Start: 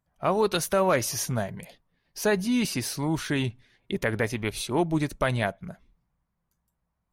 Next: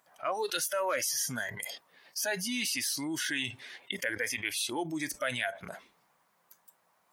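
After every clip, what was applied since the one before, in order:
high-pass filter 530 Hz 12 dB per octave
noise reduction from a noise print of the clip's start 17 dB
envelope flattener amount 70%
level −6.5 dB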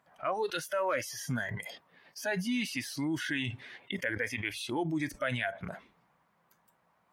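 bass and treble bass +9 dB, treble −12 dB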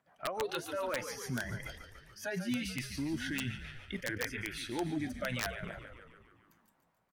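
rotating-speaker cabinet horn 7 Hz, later 0.9 Hz, at 0:04.22
echo with shifted repeats 144 ms, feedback 62%, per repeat −57 Hz, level −9.5 dB
wrap-around overflow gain 22.5 dB
level −2 dB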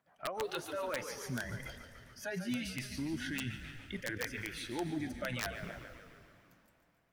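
convolution reverb RT60 3.2 s, pre-delay 117 ms, DRR 15 dB
level −2 dB

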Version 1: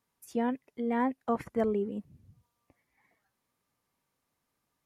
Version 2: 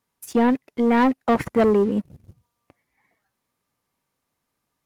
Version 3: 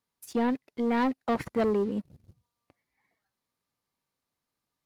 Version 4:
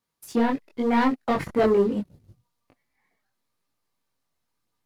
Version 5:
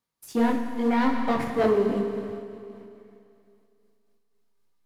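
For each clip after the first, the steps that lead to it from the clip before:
leveller curve on the samples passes 2; level +7 dB
parametric band 4,300 Hz +5 dB 0.63 octaves; level −8.5 dB
multi-voice chorus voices 4, 0.76 Hz, delay 22 ms, depth 4.7 ms; in parallel at −8 dB: slack as between gear wheels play −39.5 dBFS; on the sum: level +6 dB
on a send at −4 dB: convolution reverb RT60 2.6 s, pre-delay 35 ms; on the sum: amplitude modulation by smooth noise, depth 55%

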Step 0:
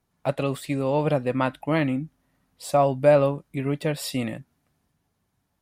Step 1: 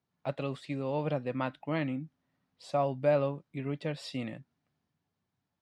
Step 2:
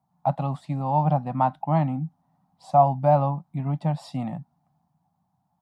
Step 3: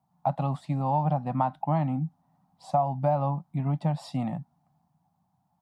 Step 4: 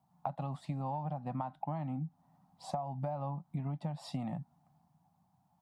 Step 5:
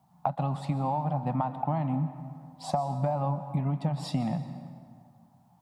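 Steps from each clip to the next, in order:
Chebyshev band-pass filter 110–4,700 Hz, order 2; level −8.5 dB
drawn EQ curve 110 Hz 0 dB, 170 Hz +9 dB, 460 Hz −17 dB, 780 Hz +14 dB, 1,600 Hz −10 dB, 2,600 Hz −14 dB, 3,700 Hz −11 dB, 6,100 Hz −8 dB, 9,900 Hz −4 dB; level +7 dB
downward compressor 6 to 1, threshold −21 dBFS, peak gain reduction 9.5 dB
downward compressor 10 to 1, threshold −34 dBFS, peak gain reduction 14.5 dB
dense smooth reverb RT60 2.1 s, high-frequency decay 0.6×, pre-delay 110 ms, DRR 10.5 dB; level +8.5 dB

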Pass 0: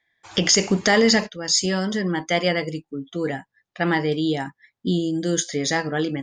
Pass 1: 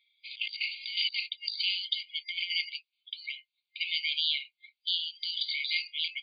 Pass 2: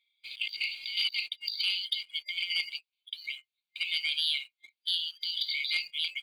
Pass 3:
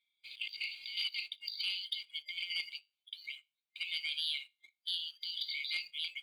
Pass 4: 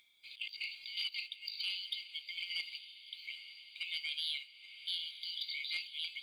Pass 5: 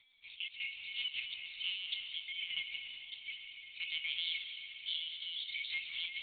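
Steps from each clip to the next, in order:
brick-wall band-pass 2,100–4,800 Hz; compressor whose output falls as the input rises −34 dBFS, ratio −0.5; level +3.5 dB
leveller curve on the samples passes 1; level −3 dB
tuned comb filter 50 Hz, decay 0.28 s, harmonics all, mix 30%; level −5 dB
upward compression, threshold −54 dBFS; feedback delay with all-pass diffusion 912 ms, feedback 57%, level −12 dB; level −2 dB
convolution reverb RT60 2.9 s, pre-delay 110 ms, DRR 4 dB; linear-prediction vocoder at 8 kHz pitch kept; level +1 dB

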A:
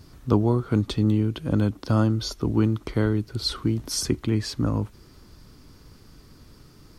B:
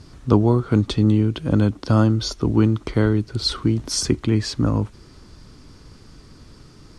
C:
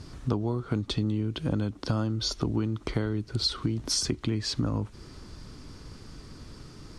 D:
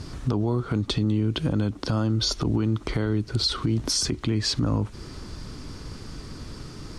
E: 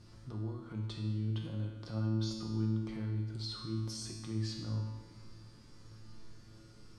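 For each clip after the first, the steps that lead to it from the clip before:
low-pass filter 9,400 Hz 24 dB per octave; level +4.5 dB
dynamic equaliser 4,000 Hz, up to +4 dB, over −40 dBFS, Q 1.1; downward compressor 6 to 1, threshold −25 dBFS, peak gain reduction 15 dB
brickwall limiter −22 dBFS, peak gain reduction 8.5 dB; level +7 dB
tuned comb filter 110 Hz, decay 1.1 s, harmonics all, mix 90%; convolution reverb RT60 1.6 s, pre-delay 6 ms, DRR 6.5 dB; level −5 dB

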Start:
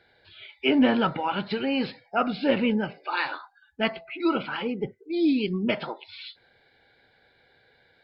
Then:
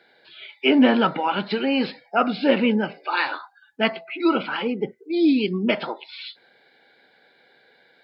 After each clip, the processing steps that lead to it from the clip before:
high-pass filter 180 Hz 24 dB per octave
level +4.5 dB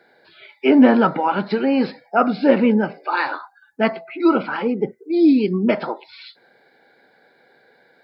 parametric band 3,100 Hz −12.5 dB 0.97 octaves
level +4.5 dB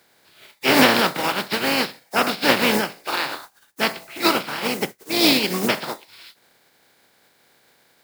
compressing power law on the bin magnitudes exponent 0.32
level −3 dB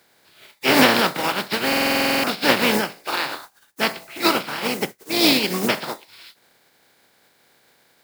buffer that repeats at 0:01.68, samples 2,048, times 11

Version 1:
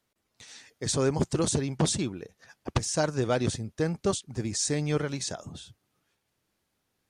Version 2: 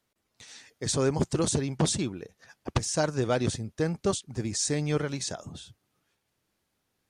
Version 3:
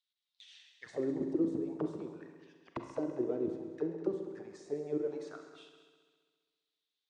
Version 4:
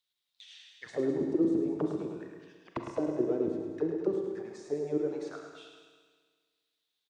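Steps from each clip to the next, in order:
no processing that can be heard
envelope filter 320–3,700 Hz, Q 5.3, down, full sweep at −22.5 dBFS; echo machine with several playback heads 67 ms, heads all three, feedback 56%, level −15.5 dB; four-comb reverb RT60 1.1 s, combs from 33 ms, DRR 7 dB
repeating echo 106 ms, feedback 51%, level −7 dB; level +4 dB

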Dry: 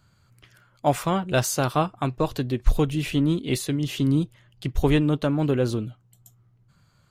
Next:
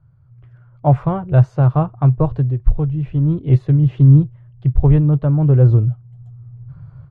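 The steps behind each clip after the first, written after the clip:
low-pass filter 1,000 Hz 12 dB per octave
low shelf with overshoot 170 Hz +7.5 dB, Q 3
automatic gain control gain up to 15 dB
level −1 dB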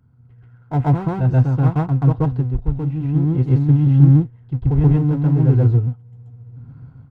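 gain on one half-wave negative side −7 dB
notch comb filter 590 Hz
backwards echo 131 ms −3 dB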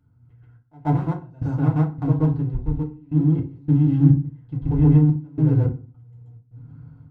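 gate pattern "xxxx..xx..xxx.xx" 106 BPM −24 dB
feedback delay network reverb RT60 0.35 s, low-frequency decay 1.3×, high-frequency decay 0.75×, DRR 1 dB
level −7 dB

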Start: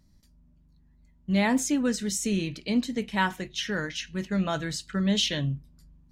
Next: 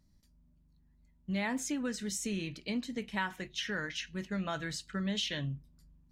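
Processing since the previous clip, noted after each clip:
dynamic equaliser 1,800 Hz, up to +5 dB, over −40 dBFS, Q 0.71
downward compressor 2.5 to 1, threshold −26 dBFS, peak gain reduction 6.5 dB
level −6.5 dB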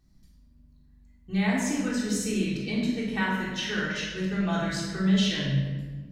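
rectangular room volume 1,300 cubic metres, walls mixed, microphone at 3.6 metres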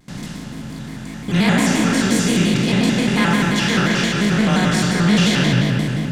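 compressor on every frequency bin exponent 0.4
noise gate with hold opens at −28 dBFS
pitch modulation by a square or saw wave square 5.7 Hz, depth 160 cents
level +5 dB

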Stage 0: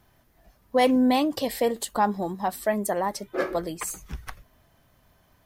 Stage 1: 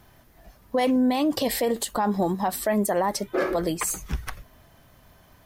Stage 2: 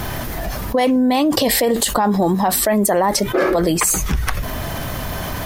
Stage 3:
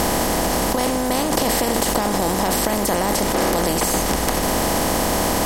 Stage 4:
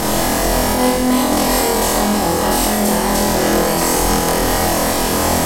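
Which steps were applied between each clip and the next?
brickwall limiter −22.5 dBFS, peak gain reduction 11 dB; level +7 dB
envelope flattener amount 70%; level +5 dB
compressor on every frequency bin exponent 0.2; level −11.5 dB
flutter between parallel walls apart 4.1 metres, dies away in 0.87 s; level −1 dB

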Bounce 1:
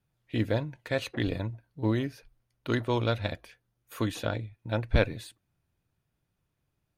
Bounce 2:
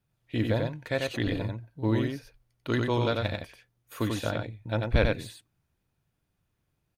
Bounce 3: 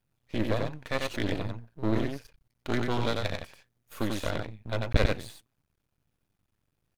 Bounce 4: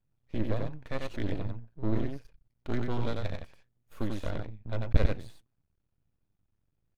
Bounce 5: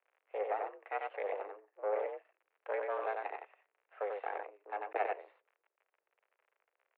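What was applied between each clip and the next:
single-tap delay 92 ms −3.5 dB
half-wave rectification; level +2.5 dB
spectral tilt −2 dB per octave; level −7 dB
surface crackle 57 per second −50 dBFS; single-sideband voice off tune +200 Hz 260–2,300 Hz

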